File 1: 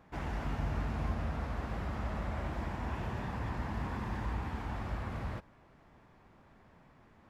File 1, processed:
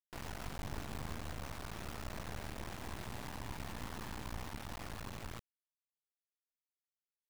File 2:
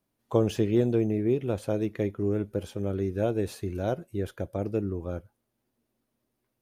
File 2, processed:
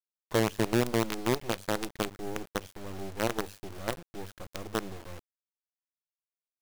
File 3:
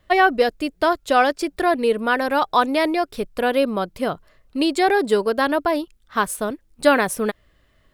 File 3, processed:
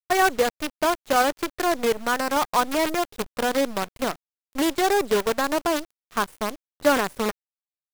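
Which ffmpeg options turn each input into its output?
-filter_complex "[0:a]bandreject=f=50:t=h:w=6,bandreject=f=100:t=h:w=6,acrossover=split=2700[a][b];[b]acompressor=threshold=-44dB:ratio=4:attack=1:release=60[c];[a][c]amix=inputs=2:normalize=0,acrusher=bits=4:dc=4:mix=0:aa=0.000001,volume=-4dB"

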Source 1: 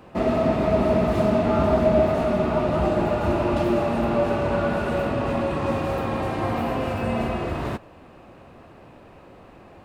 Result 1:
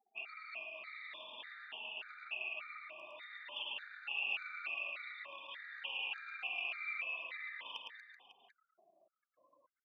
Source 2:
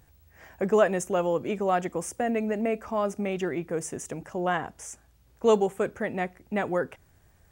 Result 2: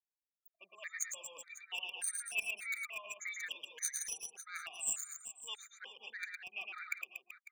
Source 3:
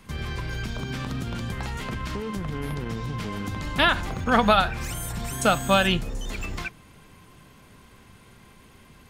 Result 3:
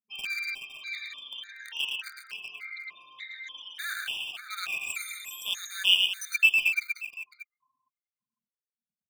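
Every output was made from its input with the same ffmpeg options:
-filter_complex "[0:a]afftfilt=real='re*pow(10,14/40*sin(2*PI*(1.1*log(max(b,1)*sr/1024/100)/log(2)-(-0.48)*(pts-256)/sr)))':imag='im*pow(10,14/40*sin(2*PI*(1.1*log(max(b,1)*sr/1024/100)/log(2)-(-0.48)*(pts-256)/sr)))':win_size=1024:overlap=0.75,afftfilt=real='re*gte(hypot(re,im),0.0224)':imag='im*gte(hypot(re,im),0.0224)':win_size=1024:overlap=0.75,areverse,acompressor=threshold=-32dB:ratio=12,areverse,aeval=exprs='0.0668*(cos(1*acos(clip(val(0)/0.0668,-1,1)))-cos(1*PI/2))+0.00473*(cos(4*acos(clip(val(0)/0.0668,-1,1)))-cos(4*PI/2))+0.000422*(cos(6*acos(clip(val(0)/0.0668,-1,1)))-cos(6*PI/2))':c=same,highpass=f=2.7k:t=q:w=3.6,asplit=2[a][b];[b]acrusher=bits=4:mix=0:aa=0.000001,volume=-6.5dB[c];[a][c]amix=inputs=2:normalize=0,aecho=1:1:110|236.5|382|549.3|741.7:0.631|0.398|0.251|0.158|0.1,afftfilt=real='re*gt(sin(2*PI*1.7*pts/sr)*(1-2*mod(floor(b*sr/1024/1200),2)),0)':imag='im*gt(sin(2*PI*1.7*pts/sr)*(1-2*mod(floor(b*sr/1024/1200),2)),0)':win_size=1024:overlap=0.75,volume=3dB"

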